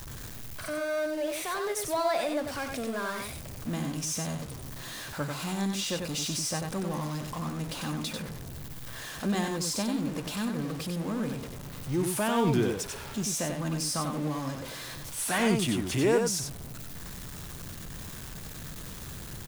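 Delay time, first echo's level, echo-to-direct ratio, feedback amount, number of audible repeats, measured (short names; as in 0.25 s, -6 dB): 93 ms, -5.0 dB, -5.0 dB, no steady repeat, 1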